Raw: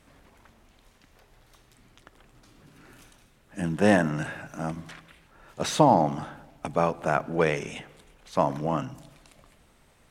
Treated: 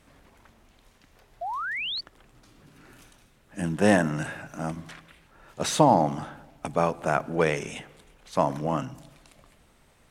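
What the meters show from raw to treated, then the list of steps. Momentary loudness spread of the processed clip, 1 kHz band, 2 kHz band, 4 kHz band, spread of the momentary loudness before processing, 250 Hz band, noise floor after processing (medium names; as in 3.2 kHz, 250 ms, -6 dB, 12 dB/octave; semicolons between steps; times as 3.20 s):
18 LU, +0.5 dB, +1.5 dB, +4.5 dB, 19 LU, 0.0 dB, -61 dBFS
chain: dynamic bell 9.5 kHz, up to +5 dB, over -53 dBFS, Q 0.85; painted sound rise, 1.41–2.01 s, 650–4700 Hz -31 dBFS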